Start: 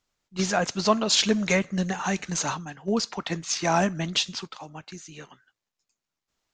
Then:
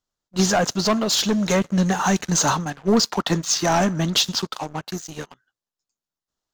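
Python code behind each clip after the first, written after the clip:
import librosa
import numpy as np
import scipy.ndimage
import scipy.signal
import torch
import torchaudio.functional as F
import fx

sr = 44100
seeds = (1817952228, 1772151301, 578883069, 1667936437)

y = fx.peak_eq(x, sr, hz=2300.0, db=-10.5, octaves=0.5)
y = fx.leveller(y, sr, passes=3)
y = fx.rider(y, sr, range_db=4, speed_s=0.5)
y = F.gain(torch.from_numpy(y), -3.0).numpy()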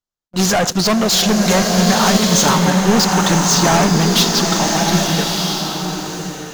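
y = x + 10.0 ** (-20.5 / 20.0) * np.pad(x, (int(82 * sr / 1000.0), 0))[:len(x)]
y = fx.leveller(y, sr, passes=3)
y = fx.rev_bloom(y, sr, seeds[0], attack_ms=1220, drr_db=0.5)
y = F.gain(torch.from_numpy(y), -1.0).numpy()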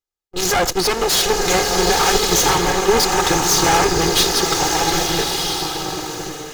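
y = fx.lower_of_two(x, sr, delay_ms=2.4)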